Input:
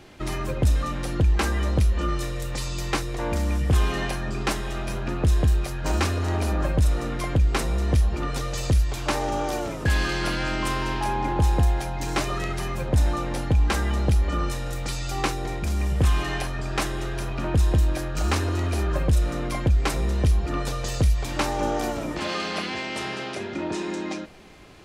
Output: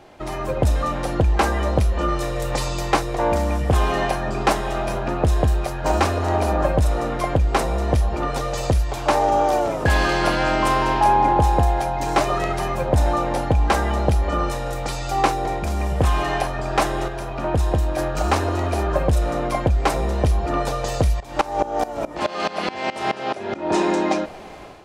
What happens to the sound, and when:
17.08–17.98 gain -5 dB
21.2–23.74 dB-ramp tremolo swelling 4.7 Hz, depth 19 dB
whole clip: bell 720 Hz +11.5 dB 1.5 oct; AGC; gain -4 dB

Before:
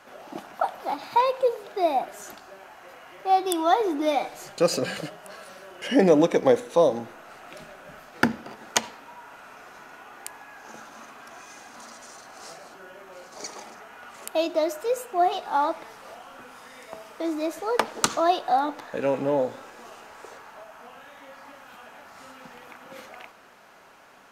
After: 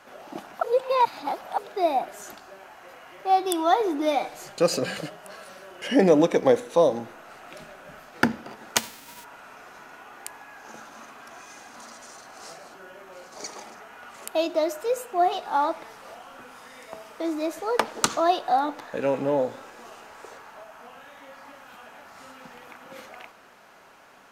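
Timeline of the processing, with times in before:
0.63–1.58 reverse
8.76–9.23 spectral whitening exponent 0.3

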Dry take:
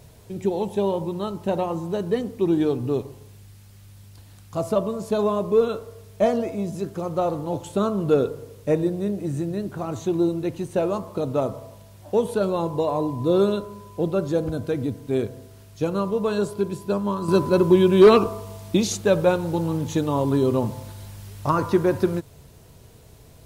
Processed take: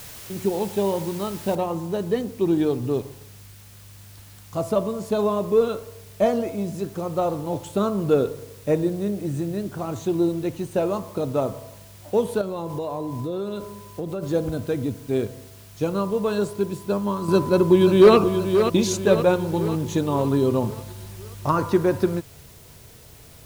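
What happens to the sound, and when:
1.55 noise floor step -41 dB -51 dB
12.41–14.23 compressor, threshold -25 dBFS
17.27–18.16 echo throw 0.53 s, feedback 55%, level -7.5 dB

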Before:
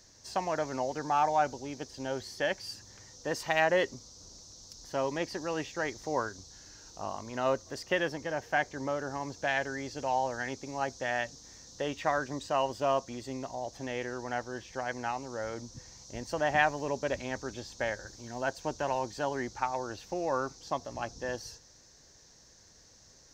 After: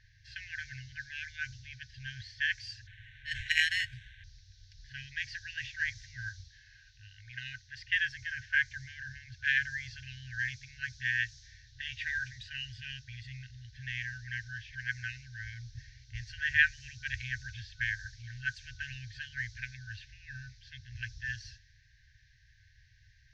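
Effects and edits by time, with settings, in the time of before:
2.87–4.24 sample-rate reducer 4800 Hz
6.48–7.78 low shelf 410 Hz -8 dB
whole clip: FFT band-reject 130–1500 Hz; LPF 3400 Hz 12 dB/oct; low-pass opened by the level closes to 2500 Hz, open at -35.5 dBFS; gain +5 dB

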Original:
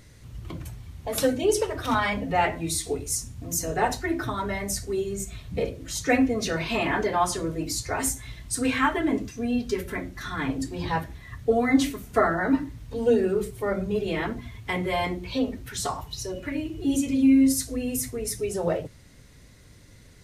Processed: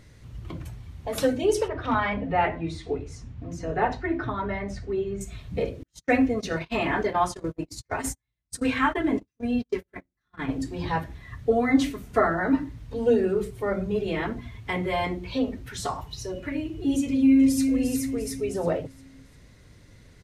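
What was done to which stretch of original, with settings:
1.68–5.21 LPF 2900 Hz
5.83–10.49 gate -29 dBFS, range -44 dB
17.04–17.65 echo throw 0.35 s, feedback 45%, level -6.5 dB
whole clip: high shelf 6000 Hz -9 dB

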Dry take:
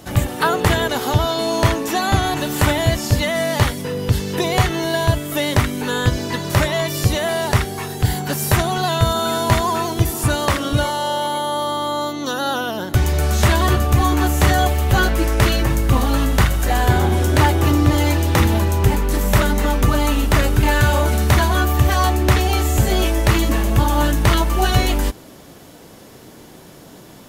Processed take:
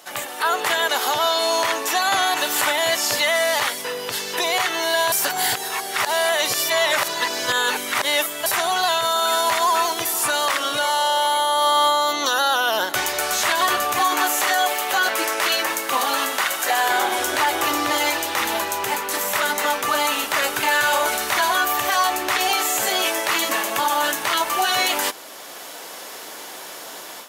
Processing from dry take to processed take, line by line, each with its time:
5.12–8.46 reverse
13.99–17.19 HPF 220 Hz
22.52–24.23 HPF 120 Hz
whole clip: HPF 770 Hz 12 dB/oct; AGC; limiter -10 dBFS

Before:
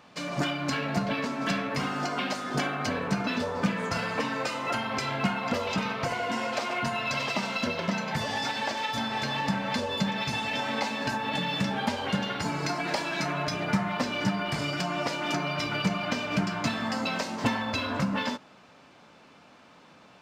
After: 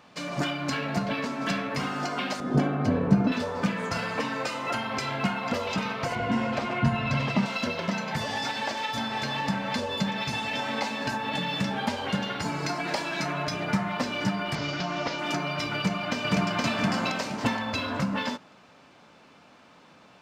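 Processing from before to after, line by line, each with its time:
2.4–3.32 tilt shelf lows +10 dB, about 830 Hz
6.15–7.46 tone controls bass +15 dB, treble -9 dB
14.55–15.19 CVSD 32 kbps
15.77–16.64 echo throw 0.47 s, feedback 30%, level 0 dB

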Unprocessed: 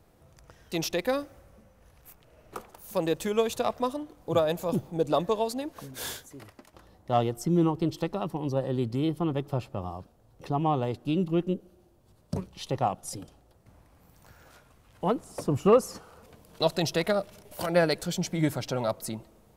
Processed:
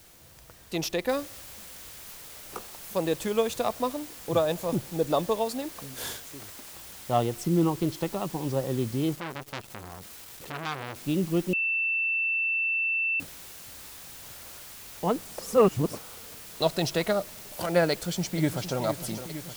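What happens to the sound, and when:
1.09 noise floor step -55 dB -45 dB
9.15–10.96 core saturation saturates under 3200 Hz
11.53–13.2 bleep 2670 Hz -24 dBFS
15.39–15.95 reverse
17.91–18.8 echo throw 0.46 s, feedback 80%, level -11 dB

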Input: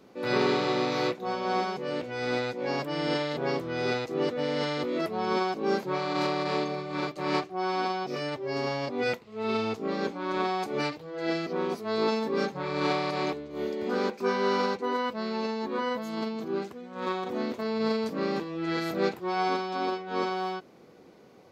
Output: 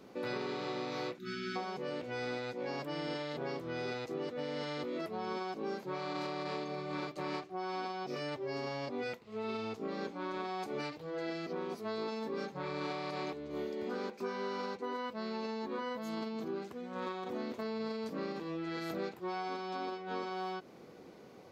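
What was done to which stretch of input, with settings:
1.18–1.56 spectral delete 380–1200 Hz
18.32–18.9 compressor 2:1, threshold -32 dBFS
whole clip: compressor, threshold -36 dBFS

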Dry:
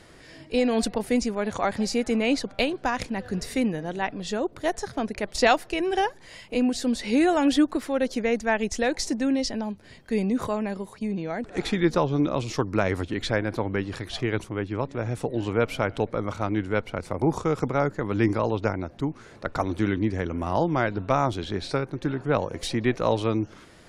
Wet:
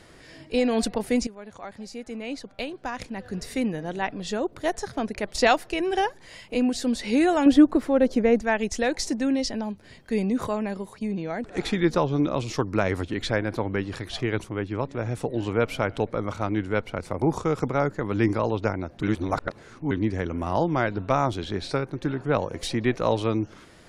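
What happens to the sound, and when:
1.27–3.91 fade in quadratic, from -14.5 dB
7.46–8.42 tilt shelf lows +6 dB, about 1400 Hz
19.03–19.91 reverse

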